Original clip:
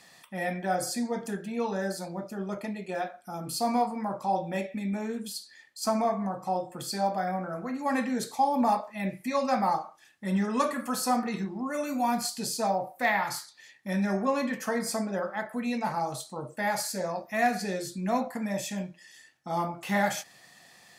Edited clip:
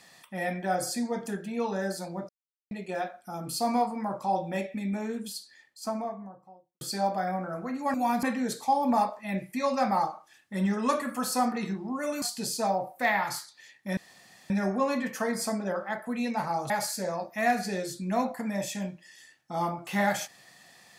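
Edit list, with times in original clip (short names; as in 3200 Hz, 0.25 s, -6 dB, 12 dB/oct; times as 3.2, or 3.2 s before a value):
2.29–2.71 mute
5.19–6.81 studio fade out
11.93–12.22 move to 7.94
13.97 insert room tone 0.53 s
16.17–16.66 cut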